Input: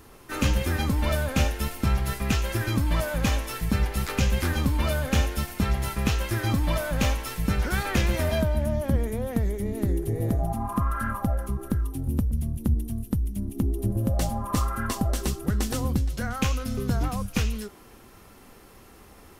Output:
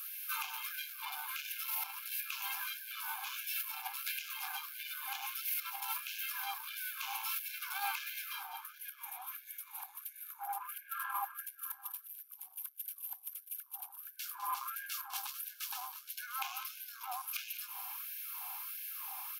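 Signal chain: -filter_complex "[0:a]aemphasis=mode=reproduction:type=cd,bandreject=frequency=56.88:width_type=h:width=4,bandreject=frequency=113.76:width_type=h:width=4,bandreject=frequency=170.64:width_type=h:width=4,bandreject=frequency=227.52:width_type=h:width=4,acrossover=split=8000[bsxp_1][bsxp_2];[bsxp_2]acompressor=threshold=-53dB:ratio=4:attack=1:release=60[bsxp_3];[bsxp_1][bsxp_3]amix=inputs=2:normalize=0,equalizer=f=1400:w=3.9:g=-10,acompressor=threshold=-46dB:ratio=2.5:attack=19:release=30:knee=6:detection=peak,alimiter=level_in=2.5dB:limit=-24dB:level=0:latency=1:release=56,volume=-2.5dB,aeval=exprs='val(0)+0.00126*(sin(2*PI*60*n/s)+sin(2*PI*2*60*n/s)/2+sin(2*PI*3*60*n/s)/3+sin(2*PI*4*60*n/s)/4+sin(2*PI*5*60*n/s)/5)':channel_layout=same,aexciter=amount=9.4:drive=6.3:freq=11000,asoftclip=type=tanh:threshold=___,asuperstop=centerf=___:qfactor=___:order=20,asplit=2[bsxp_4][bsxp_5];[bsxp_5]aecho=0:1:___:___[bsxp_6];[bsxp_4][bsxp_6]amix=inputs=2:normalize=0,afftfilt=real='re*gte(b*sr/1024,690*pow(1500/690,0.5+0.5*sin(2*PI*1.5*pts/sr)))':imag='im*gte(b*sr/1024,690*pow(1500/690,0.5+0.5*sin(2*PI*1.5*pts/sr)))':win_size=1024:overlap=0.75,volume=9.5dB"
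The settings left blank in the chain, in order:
-35.5dB, 1900, 5.5, 204, 0.266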